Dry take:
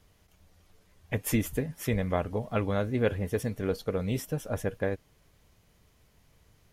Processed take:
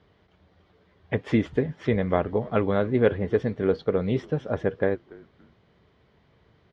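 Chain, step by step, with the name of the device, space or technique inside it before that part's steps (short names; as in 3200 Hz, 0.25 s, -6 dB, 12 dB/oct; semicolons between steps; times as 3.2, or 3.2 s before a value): frequency-shifting delay pedal into a guitar cabinet (frequency-shifting echo 0.285 s, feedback 31%, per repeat -130 Hz, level -23 dB; speaker cabinet 86–3600 Hz, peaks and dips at 100 Hz -3 dB, 390 Hz +5 dB, 2600 Hz -7 dB); gain +5 dB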